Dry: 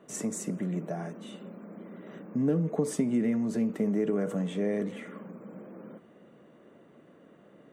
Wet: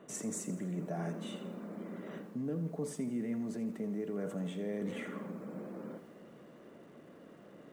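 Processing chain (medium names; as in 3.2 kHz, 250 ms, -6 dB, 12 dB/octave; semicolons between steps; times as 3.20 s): reverse; compression 6:1, threshold -36 dBFS, peak gain reduction 14 dB; reverse; bit-crushed delay 83 ms, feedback 55%, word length 10-bit, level -12.5 dB; trim +1 dB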